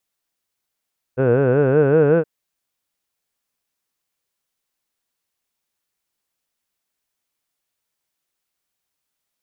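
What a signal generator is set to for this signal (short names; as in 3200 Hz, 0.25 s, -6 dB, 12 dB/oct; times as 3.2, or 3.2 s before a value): formant vowel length 1.07 s, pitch 123 Hz, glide +4.5 st, vibrato depth 1.4 st, F1 470 Hz, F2 1500 Hz, F3 2600 Hz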